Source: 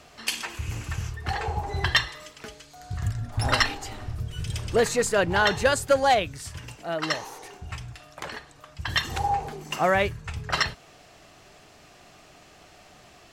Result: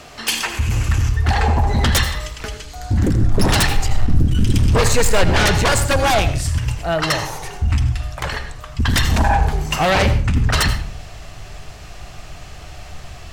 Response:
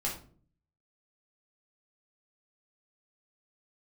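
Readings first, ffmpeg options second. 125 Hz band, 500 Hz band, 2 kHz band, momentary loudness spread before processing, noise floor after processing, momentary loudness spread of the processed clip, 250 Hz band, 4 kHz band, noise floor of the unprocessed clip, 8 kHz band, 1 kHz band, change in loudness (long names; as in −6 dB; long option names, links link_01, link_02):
+15.0 dB, +4.5 dB, +5.5 dB, 17 LU, −36 dBFS, 22 LU, +12.5 dB, +7.0 dB, −53 dBFS, +10.5 dB, +6.0 dB, +8.0 dB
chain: -filter_complex "[0:a]asubboost=boost=8:cutoff=91,aeval=exprs='0.668*sin(PI/2*6.31*val(0)/0.668)':channel_layout=same,asplit=2[link_01][link_02];[1:a]atrim=start_sample=2205,adelay=79[link_03];[link_02][link_03]afir=irnorm=-1:irlink=0,volume=-14dB[link_04];[link_01][link_04]amix=inputs=2:normalize=0,volume=-8.5dB"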